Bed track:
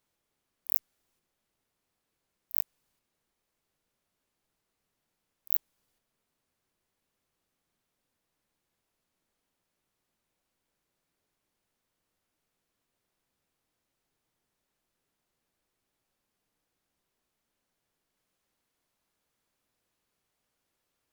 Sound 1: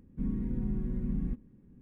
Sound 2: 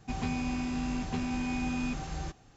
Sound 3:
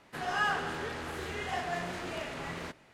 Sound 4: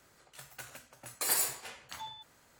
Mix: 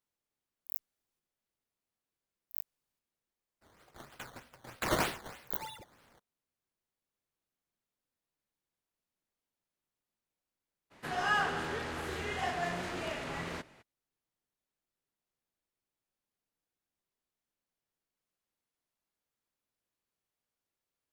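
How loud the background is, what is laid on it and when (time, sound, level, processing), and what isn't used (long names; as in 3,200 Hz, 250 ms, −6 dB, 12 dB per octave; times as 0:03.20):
bed track −10.5 dB
0:03.61: mix in 4 −0.5 dB, fades 0.02 s + sample-and-hold swept by an LFO 12× 3.2 Hz
0:10.90: mix in 3, fades 0.02 s
not used: 1, 2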